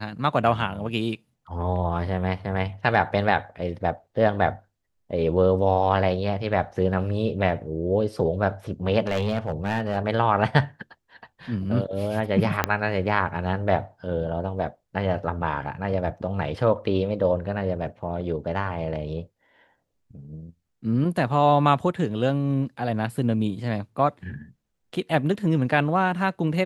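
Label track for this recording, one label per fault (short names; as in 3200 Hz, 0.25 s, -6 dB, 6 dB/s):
9.070000	9.970000	clipped -19 dBFS
12.640000	12.640000	pop -5 dBFS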